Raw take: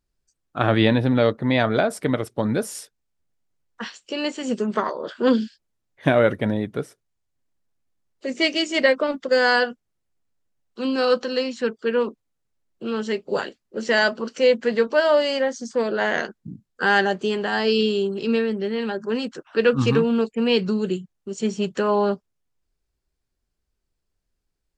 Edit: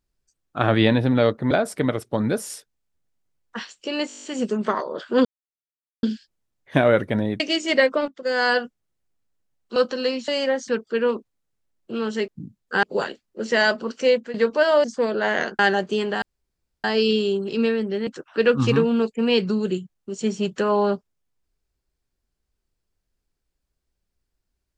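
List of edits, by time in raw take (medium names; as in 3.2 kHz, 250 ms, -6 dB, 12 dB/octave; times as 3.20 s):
1.51–1.76 s: delete
4.33 s: stutter 0.02 s, 9 plays
5.34 s: insert silence 0.78 s
6.71–8.46 s: delete
9.14–9.64 s: fade in linear, from -17 dB
10.82–11.08 s: delete
14.43–14.71 s: fade out, to -14 dB
15.21–15.61 s: move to 11.60 s
16.36–16.91 s: move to 13.20 s
17.54 s: insert room tone 0.62 s
18.77–19.26 s: delete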